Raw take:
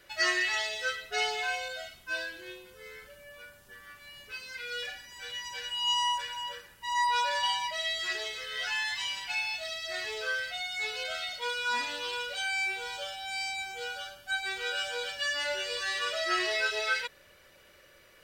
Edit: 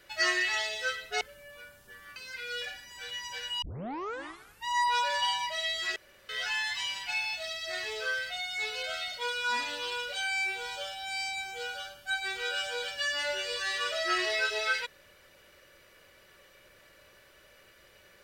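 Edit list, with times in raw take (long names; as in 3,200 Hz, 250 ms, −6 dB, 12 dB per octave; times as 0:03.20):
0:01.21–0:03.02: remove
0:03.97–0:04.37: remove
0:05.83: tape start 1.04 s
0:08.17–0:08.50: fill with room tone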